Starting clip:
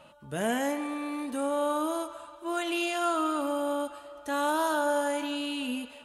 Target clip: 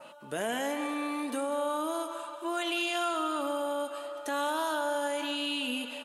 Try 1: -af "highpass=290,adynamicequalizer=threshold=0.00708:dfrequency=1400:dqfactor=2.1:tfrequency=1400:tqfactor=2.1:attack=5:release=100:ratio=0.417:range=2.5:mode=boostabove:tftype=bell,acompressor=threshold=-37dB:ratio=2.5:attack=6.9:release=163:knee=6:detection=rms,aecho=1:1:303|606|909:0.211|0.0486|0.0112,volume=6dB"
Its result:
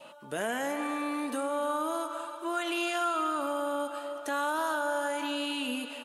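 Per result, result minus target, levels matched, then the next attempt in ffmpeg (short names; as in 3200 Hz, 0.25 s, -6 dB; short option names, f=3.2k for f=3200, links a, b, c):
echo 0.106 s late; 4000 Hz band -3.0 dB
-af "highpass=290,adynamicequalizer=threshold=0.00708:dfrequency=1400:dqfactor=2.1:tfrequency=1400:tqfactor=2.1:attack=5:release=100:ratio=0.417:range=2.5:mode=boostabove:tftype=bell,acompressor=threshold=-37dB:ratio=2.5:attack=6.9:release=163:knee=6:detection=rms,aecho=1:1:197|394|591:0.211|0.0486|0.0112,volume=6dB"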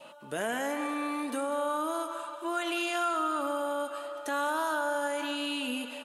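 4000 Hz band -3.0 dB
-af "highpass=290,adynamicequalizer=threshold=0.00708:dfrequency=3300:dqfactor=2.1:tfrequency=3300:tqfactor=2.1:attack=5:release=100:ratio=0.417:range=2.5:mode=boostabove:tftype=bell,acompressor=threshold=-37dB:ratio=2.5:attack=6.9:release=163:knee=6:detection=rms,aecho=1:1:197|394|591:0.211|0.0486|0.0112,volume=6dB"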